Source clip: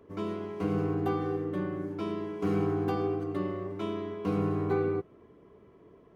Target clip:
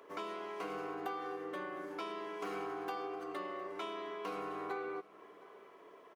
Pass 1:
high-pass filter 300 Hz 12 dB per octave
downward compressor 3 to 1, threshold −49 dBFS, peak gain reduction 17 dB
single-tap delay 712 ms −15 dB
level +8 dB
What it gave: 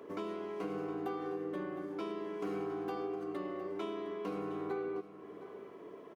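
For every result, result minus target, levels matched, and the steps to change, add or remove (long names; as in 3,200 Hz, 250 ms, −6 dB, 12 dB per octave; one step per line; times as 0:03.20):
250 Hz band +5.0 dB; echo-to-direct +7 dB
change: high-pass filter 720 Hz 12 dB per octave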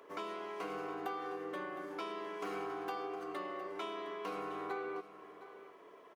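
echo-to-direct +7 dB
change: single-tap delay 712 ms −22 dB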